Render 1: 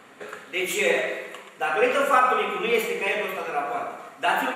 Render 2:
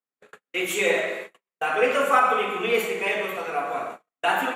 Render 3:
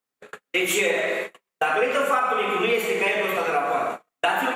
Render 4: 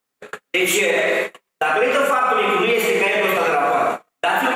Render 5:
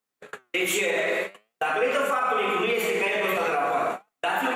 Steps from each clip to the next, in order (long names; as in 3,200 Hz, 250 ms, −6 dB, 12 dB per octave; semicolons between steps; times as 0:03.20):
noise gate −34 dBFS, range −50 dB
downward compressor 6 to 1, threshold −27 dBFS, peak gain reduction 12.5 dB; level +8 dB
brickwall limiter −16 dBFS, peak gain reduction 8 dB; level +7.5 dB
flanger 0.49 Hz, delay 4.5 ms, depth 8.1 ms, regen +83%; level −2.5 dB